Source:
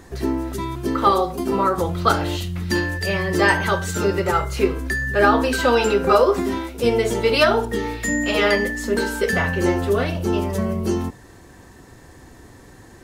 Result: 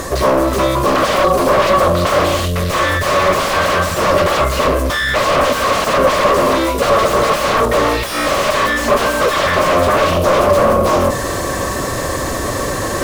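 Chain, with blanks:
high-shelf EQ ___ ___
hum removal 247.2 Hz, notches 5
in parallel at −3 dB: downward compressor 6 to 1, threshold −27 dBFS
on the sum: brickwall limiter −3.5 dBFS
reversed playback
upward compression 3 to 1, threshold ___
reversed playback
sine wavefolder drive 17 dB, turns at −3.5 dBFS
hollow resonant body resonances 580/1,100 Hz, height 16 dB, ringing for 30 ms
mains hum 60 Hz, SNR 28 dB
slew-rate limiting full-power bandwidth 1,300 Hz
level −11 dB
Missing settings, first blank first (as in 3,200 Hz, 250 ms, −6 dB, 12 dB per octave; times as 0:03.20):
2,900 Hz, +11 dB, −23 dBFS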